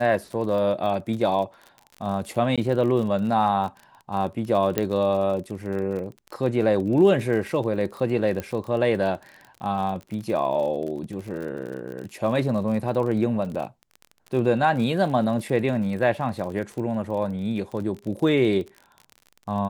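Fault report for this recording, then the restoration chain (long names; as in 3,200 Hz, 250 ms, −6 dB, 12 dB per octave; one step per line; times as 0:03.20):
surface crackle 40 per second −32 dBFS
0:02.56–0:02.58: drop-out 16 ms
0:04.78: click −8 dBFS
0:08.40: click −15 dBFS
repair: click removal
repair the gap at 0:02.56, 16 ms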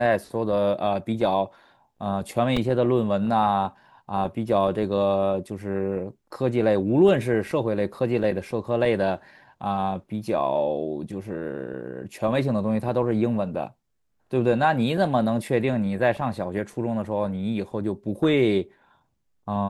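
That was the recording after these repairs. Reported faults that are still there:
none of them is left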